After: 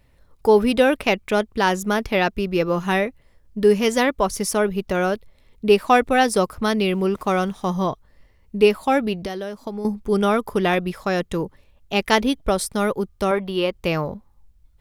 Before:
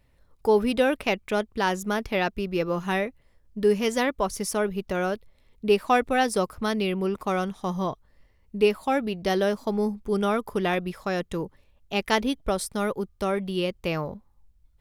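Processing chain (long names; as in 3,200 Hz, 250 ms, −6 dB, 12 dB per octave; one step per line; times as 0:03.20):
0:06.83–0:07.65: background noise pink −65 dBFS
0:09.19–0:09.85: downward compressor 6 to 1, threshold −33 dBFS, peak gain reduction 12.5 dB
0:13.31–0:13.73: octave-band graphic EQ 125/1,000/8,000 Hz −11/+6/−9 dB
level +5.5 dB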